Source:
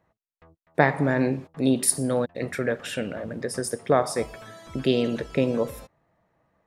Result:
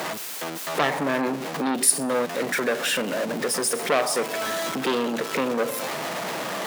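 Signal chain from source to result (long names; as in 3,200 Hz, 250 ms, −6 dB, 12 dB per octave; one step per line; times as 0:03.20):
converter with a step at zero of −29 dBFS
in parallel at +2 dB: downward compressor, threshold −30 dBFS, peak gain reduction 17 dB
on the sum: Bessel high-pass filter 260 Hz, order 6
saturating transformer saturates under 2,200 Hz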